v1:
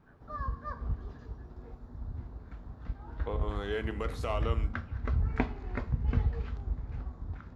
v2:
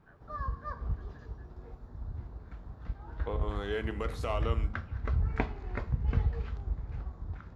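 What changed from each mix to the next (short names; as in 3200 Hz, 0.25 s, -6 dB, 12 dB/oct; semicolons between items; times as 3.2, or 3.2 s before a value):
first voice +3.5 dB; background: add bell 250 Hz -6.5 dB 0.26 oct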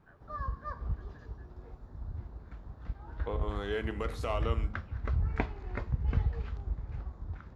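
background: send -9.5 dB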